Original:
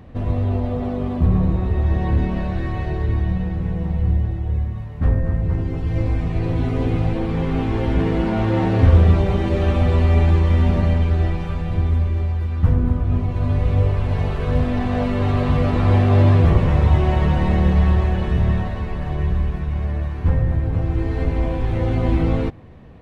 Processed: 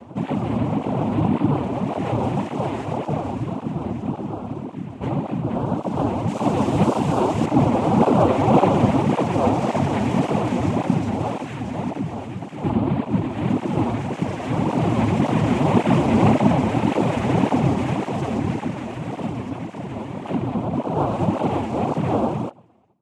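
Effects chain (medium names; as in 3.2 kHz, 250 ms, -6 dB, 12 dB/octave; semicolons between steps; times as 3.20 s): fade out at the end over 1.41 s; peaking EQ 290 Hz +14 dB 0.34 oct; small resonant body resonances 300/970 Hz, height 7 dB; noise-vocoded speech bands 4; 6.28–7.46 s: treble shelf 3.4 kHz +9 dB; cancelling through-zero flanger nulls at 1.8 Hz, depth 7.2 ms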